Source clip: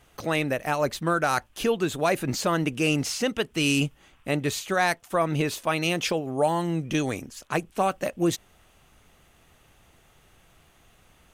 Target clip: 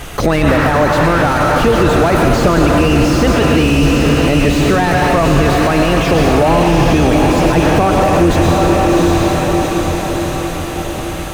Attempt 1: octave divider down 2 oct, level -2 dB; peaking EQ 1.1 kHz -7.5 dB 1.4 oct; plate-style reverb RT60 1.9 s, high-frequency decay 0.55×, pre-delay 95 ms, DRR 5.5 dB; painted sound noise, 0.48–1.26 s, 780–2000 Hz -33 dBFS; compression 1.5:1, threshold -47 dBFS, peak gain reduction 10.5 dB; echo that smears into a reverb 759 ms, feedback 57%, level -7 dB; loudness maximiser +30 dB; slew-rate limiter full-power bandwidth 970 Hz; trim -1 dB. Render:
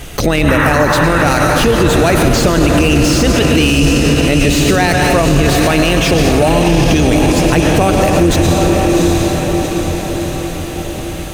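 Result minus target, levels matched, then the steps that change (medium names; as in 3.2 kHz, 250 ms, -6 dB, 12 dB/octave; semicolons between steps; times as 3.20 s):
slew-rate limiter: distortion -10 dB; 1 kHz band -2.5 dB
change: slew-rate limiter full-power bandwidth 352 Hz; remove: peaking EQ 1.1 kHz -7.5 dB 1.4 oct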